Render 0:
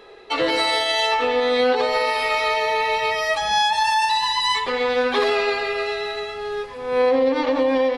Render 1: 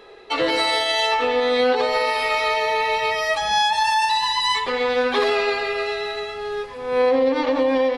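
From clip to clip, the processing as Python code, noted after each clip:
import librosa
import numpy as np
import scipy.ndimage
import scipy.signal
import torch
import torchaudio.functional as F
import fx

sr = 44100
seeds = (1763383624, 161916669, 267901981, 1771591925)

y = x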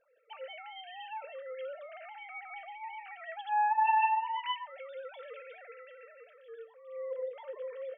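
y = fx.sine_speech(x, sr)
y = fx.comb_fb(y, sr, f0_hz=450.0, decay_s=0.33, harmonics='all', damping=0.0, mix_pct=80)
y = y * 10.0 ** (-3.5 / 20.0)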